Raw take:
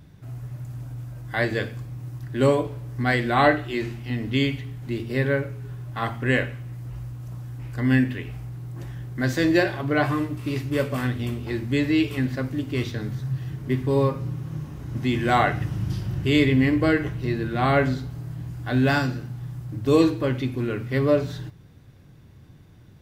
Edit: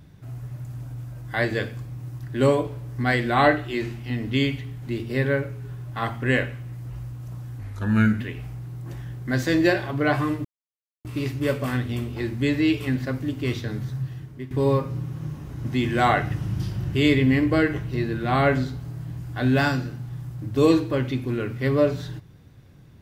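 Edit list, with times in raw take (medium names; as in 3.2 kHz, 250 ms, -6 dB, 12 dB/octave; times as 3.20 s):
7.60–8.11 s: speed 84%
10.35 s: insert silence 0.60 s
13.20–13.81 s: fade out linear, to -15.5 dB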